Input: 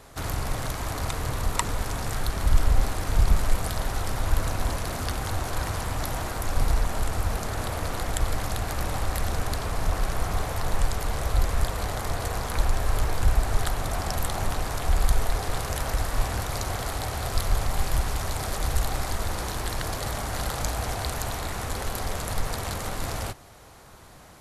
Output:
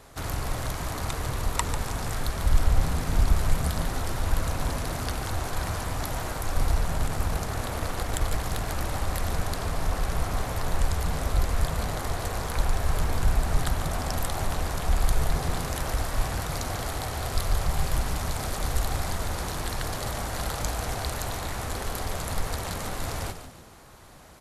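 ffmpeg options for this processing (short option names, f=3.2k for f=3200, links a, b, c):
-filter_complex "[0:a]asettb=1/sr,asplit=3[a][b][c];[a]atrim=end=6.974[d];[b]atrim=start=6.97:end=8.67,asetpts=PTS-STARTPTS,afade=t=in:d=0.004:c=qsin,afade=t=out:st=1.696:d=0.004:c=qsin,aeval=exprs='0.398*(cos(1*acos(clip(val(0)/0.398,-1,1)))-cos(1*PI/2))+0.0224*(cos(6*acos(clip(val(0)/0.398,-1,1)))-cos(6*PI/2))':c=same[e];[c]atrim=start=8.666[f];[d][e]acrossfade=d=0.004:c1=hsin:c2=qsin[g];[g][f]acrossfade=d=0.004:c1=qsin:c2=hsin,asplit=6[h][i][j][k][l][m];[i]adelay=145,afreqshift=-91,volume=-10dB[n];[j]adelay=290,afreqshift=-182,volume=-17.3dB[o];[k]adelay=435,afreqshift=-273,volume=-24.7dB[p];[l]adelay=580,afreqshift=-364,volume=-32dB[q];[m]adelay=725,afreqshift=-455,volume=-39.3dB[r];[h][n][o][p][q][r]amix=inputs=6:normalize=0,volume=-1.5dB"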